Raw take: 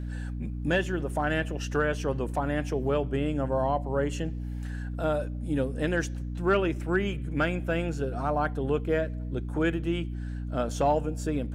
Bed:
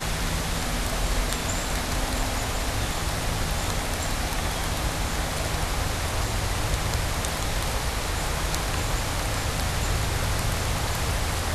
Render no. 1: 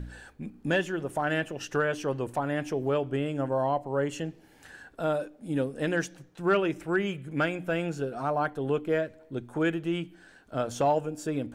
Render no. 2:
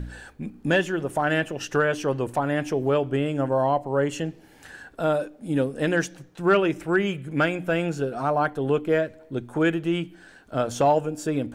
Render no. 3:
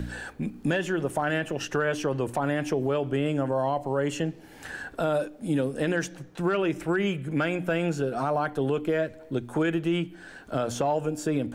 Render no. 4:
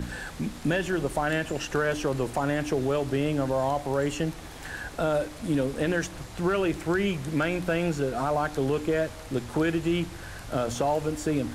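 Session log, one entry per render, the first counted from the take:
de-hum 60 Hz, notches 5
gain +5 dB
limiter -17.5 dBFS, peak gain reduction 8.5 dB; three-band squash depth 40%
add bed -16 dB

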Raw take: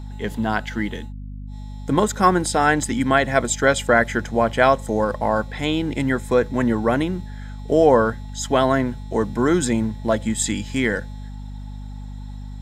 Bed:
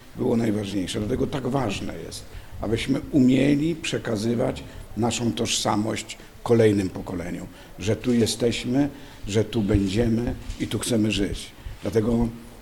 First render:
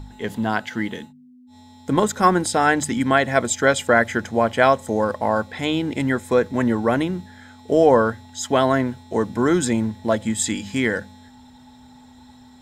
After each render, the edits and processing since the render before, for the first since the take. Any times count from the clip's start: de-hum 50 Hz, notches 4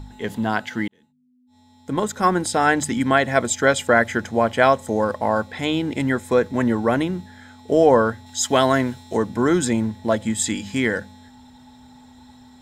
0.88–2.69 fade in; 8.26–9.17 high shelf 2500 Hz +7.5 dB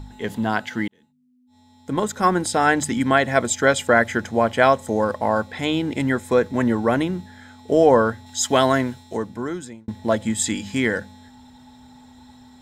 8.67–9.88 fade out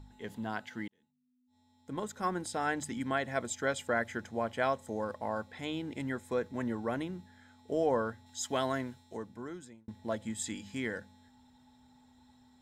gain -15 dB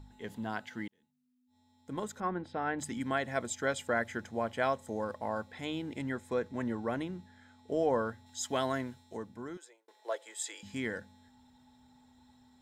2.2–2.79 air absorption 340 m; 5.99–7.94 high shelf 11000 Hz -7 dB; 9.57–10.63 steep high-pass 390 Hz 48 dB/oct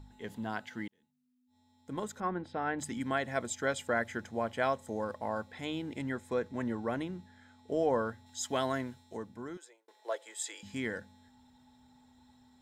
nothing audible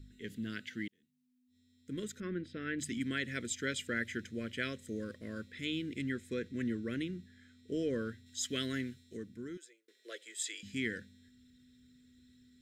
dynamic EQ 3000 Hz, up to +4 dB, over -50 dBFS, Q 0.93; Chebyshev band-stop 370–1900 Hz, order 2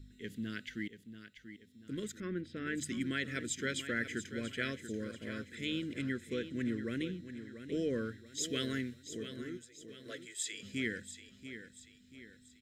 feedback echo 0.686 s, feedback 43%, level -11 dB

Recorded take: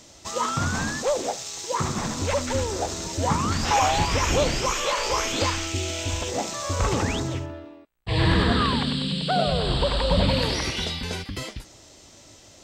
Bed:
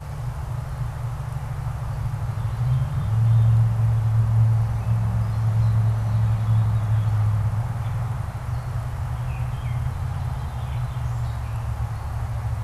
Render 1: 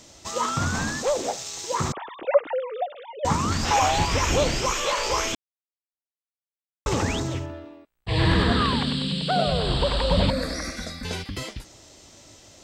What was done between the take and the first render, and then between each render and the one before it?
1.92–3.25 sine-wave speech; 5.35–6.86 mute; 10.3–11.05 fixed phaser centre 600 Hz, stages 8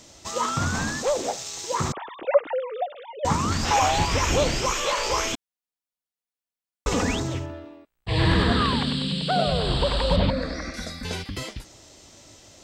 5.34–7.15 comb 4.1 ms, depth 60%; 10.16–10.74 air absorption 140 m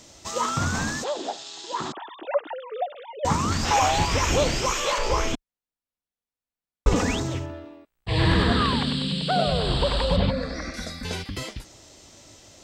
1.04–2.72 speaker cabinet 290–6400 Hz, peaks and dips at 310 Hz +4 dB, 510 Hz -10 dB, 1200 Hz -4 dB, 2200 Hz -9 dB, 3400 Hz +4 dB, 5900 Hz -10 dB; 4.98–6.96 tilt -2 dB/oct; 10.05–10.56 notch comb 310 Hz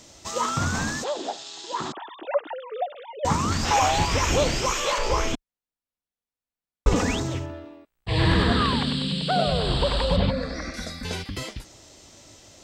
nothing audible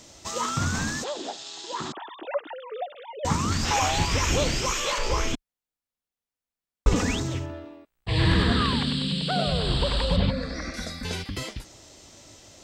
dynamic EQ 710 Hz, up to -5 dB, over -36 dBFS, Q 0.79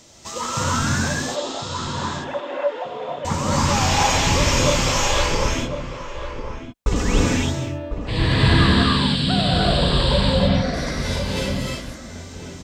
outdoor echo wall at 180 m, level -8 dB; non-linear reverb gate 0.34 s rising, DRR -5 dB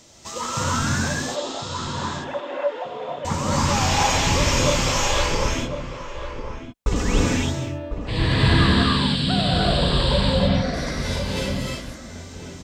gain -1.5 dB

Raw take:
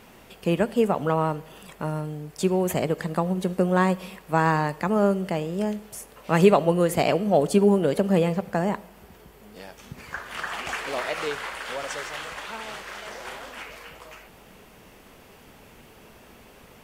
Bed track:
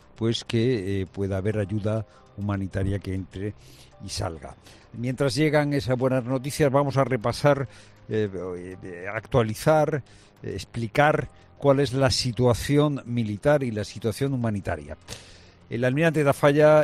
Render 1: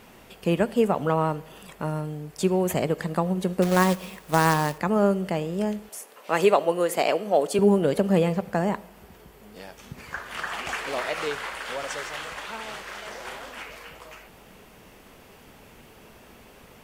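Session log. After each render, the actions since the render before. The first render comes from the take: 3.62–4.78 companded quantiser 4-bit; 5.89–7.59 HPF 370 Hz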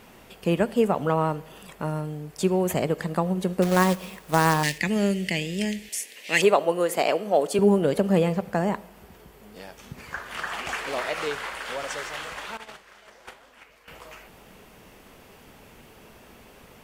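4.63–6.42 EQ curve 280 Hz 0 dB, 1300 Hz -14 dB, 1900 Hz +12 dB, 7600 Hz +10 dB, 15000 Hz +2 dB; 12.57–13.88 gate -36 dBFS, range -14 dB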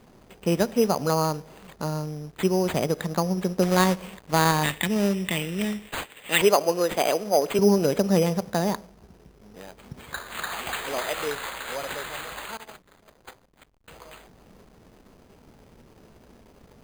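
backlash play -42.5 dBFS; sample-and-hold 8×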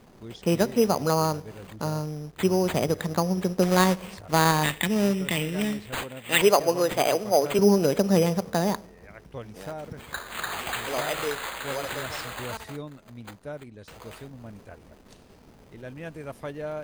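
add bed track -17.5 dB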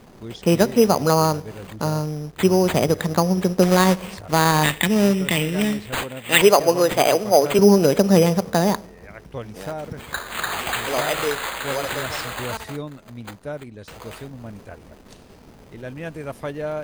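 gain +6 dB; limiter -3 dBFS, peak gain reduction 3 dB

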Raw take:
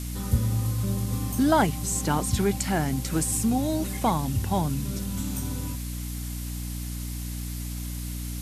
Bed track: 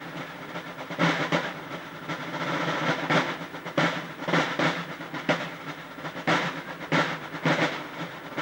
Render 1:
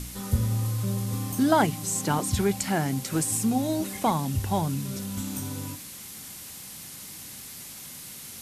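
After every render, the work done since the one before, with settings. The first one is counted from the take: de-hum 60 Hz, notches 5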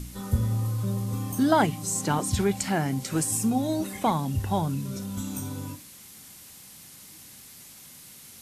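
noise print and reduce 6 dB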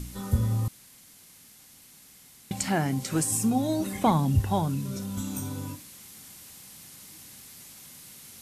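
0.68–2.51 room tone; 3.86–4.41 low shelf 320 Hz +6 dB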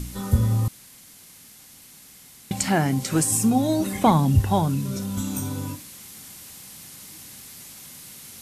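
gain +5 dB

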